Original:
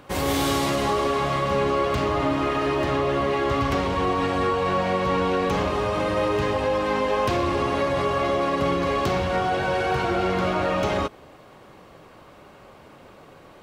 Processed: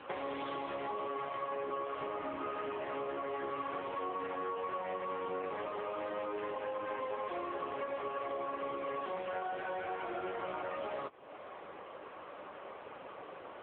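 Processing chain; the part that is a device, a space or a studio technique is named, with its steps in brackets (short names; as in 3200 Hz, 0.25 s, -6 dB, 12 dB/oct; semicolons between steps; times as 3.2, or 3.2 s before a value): voicemail (BPF 380–3100 Hz; compressor 6:1, threshold -40 dBFS, peak gain reduction 18 dB; gain +4 dB; AMR-NB 6.7 kbps 8000 Hz)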